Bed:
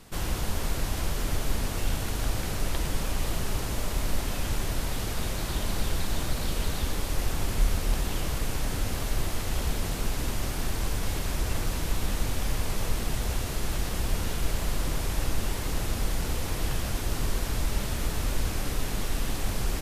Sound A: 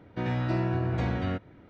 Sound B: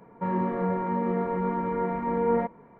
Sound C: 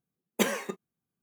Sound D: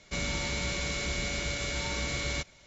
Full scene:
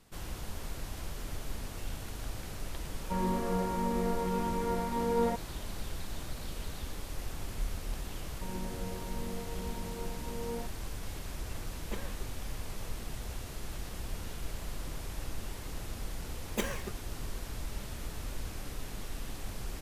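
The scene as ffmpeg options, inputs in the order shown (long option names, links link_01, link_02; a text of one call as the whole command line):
ffmpeg -i bed.wav -i cue0.wav -i cue1.wav -i cue2.wav -filter_complex "[2:a]asplit=2[link_01][link_02];[3:a]asplit=2[link_03][link_04];[0:a]volume=-11dB[link_05];[link_02]equalizer=frequency=1300:width_type=o:width=0.59:gain=-14[link_06];[link_03]lowpass=frequency=2500:poles=1[link_07];[link_04]acontrast=64[link_08];[link_01]atrim=end=2.79,asetpts=PTS-STARTPTS,volume=-5dB,afade=type=in:duration=0.004:curve=hsin,afade=type=out:start_time=2.786:duration=0.004:curve=hsin,adelay=2890[link_09];[link_06]atrim=end=2.79,asetpts=PTS-STARTPTS,volume=-14dB,afade=type=in:duration=0.004:curve=hsin,afade=type=out:start_time=2.786:duration=0.004:curve=hsin,adelay=8200[link_10];[link_07]atrim=end=1.22,asetpts=PTS-STARTPTS,volume=-15dB,afade=type=in:duration=0.004:curve=hsin,afade=type=out:start_time=1.216:duration=0.004:curve=hsin,adelay=11520[link_11];[link_08]atrim=end=1.22,asetpts=PTS-STARTPTS,volume=-13.5dB,afade=type=in:duration=0.004:curve=hsin,afade=type=out:start_time=1.216:duration=0.004:curve=hsin,adelay=16180[link_12];[link_05][link_09][link_10][link_11][link_12]amix=inputs=5:normalize=0" out.wav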